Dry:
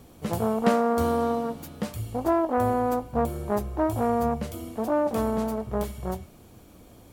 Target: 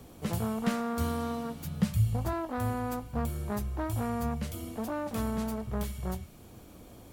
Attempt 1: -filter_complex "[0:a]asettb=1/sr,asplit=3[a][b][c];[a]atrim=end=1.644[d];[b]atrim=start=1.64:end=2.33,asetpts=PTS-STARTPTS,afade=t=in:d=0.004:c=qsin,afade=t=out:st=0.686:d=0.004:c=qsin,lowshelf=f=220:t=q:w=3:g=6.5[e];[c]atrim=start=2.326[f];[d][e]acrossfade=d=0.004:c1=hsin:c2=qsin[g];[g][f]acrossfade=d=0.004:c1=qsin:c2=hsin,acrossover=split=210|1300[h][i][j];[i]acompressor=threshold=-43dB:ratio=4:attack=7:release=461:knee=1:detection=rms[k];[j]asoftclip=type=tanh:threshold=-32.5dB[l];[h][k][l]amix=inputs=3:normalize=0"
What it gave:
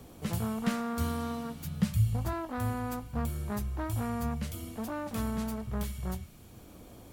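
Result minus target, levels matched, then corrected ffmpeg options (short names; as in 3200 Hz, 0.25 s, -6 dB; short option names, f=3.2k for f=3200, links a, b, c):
compressor: peak gain reduction +5 dB
-filter_complex "[0:a]asettb=1/sr,asplit=3[a][b][c];[a]atrim=end=1.644[d];[b]atrim=start=1.64:end=2.33,asetpts=PTS-STARTPTS,afade=t=in:d=0.004:c=qsin,afade=t=out:st=0.686:d=0.004:c=qsin,lowshelf=f=220:t=q:w=3:g=6.5[e];[c]atrim=start=2.326[f];[d][e]acrossfade=d=0.004:c1=hsin:c2=qsin[g];[g][f]acrossfade=d=0.004:c1=qsin:c2=hsin,acrossover=split=210|1300[h][i][j];[i]acompressor=threshold=-36.5dB:ratio=4:attack=7:release=461:knee=1:detection=rms[k];[j]asoftclip=type=tanh:threshold=-32.5dB[l];[h][k][l]amix=inputs=3:normalize=0"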